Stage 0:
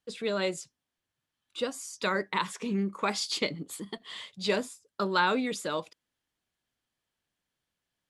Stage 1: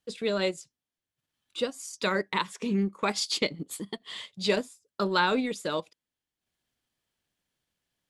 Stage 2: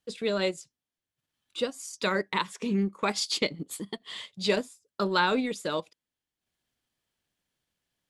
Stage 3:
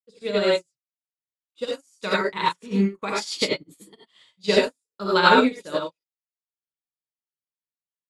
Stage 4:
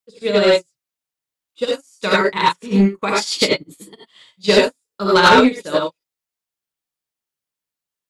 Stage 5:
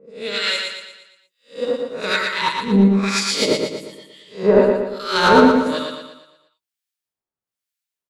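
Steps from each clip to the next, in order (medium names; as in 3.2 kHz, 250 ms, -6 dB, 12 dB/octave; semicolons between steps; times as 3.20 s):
peaking EQ 1.2 kHz -3 dB 1.5 oct; transient shaper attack 0 dB, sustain -8 dB; trim +3 dB
no audible change
gated-style reverb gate 120 ms rising, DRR -3 dB; upward expansion 2.5:1, over -43 dBFS; trim +6.5 dB
saturation -12.5 dBFS, distortion -14 dB; trim +8.5 dB
reverse spectral sustain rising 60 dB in 0.37 s; harmonic tremolo 1.1 Hz, depth 100%, crossover 1.4 kHz; feedback delay 117 ms, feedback 47%, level -4.5 dB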